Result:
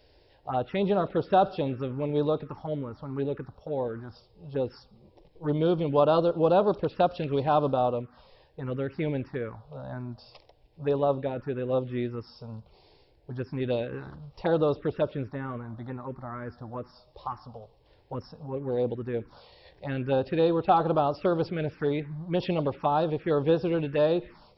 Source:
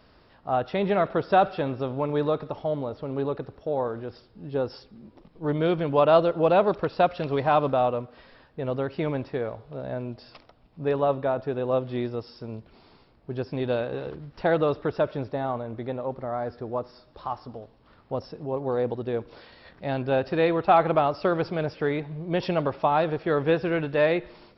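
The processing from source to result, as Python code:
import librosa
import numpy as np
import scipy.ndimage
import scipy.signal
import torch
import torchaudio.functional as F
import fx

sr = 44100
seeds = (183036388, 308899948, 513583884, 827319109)

y = fx.notch(x, sr, hz=660.0, q=12.0)
y = fx.env_phaser(y, sr, low_hz=200.0, high_hz=2100.0, full_db=-20.5)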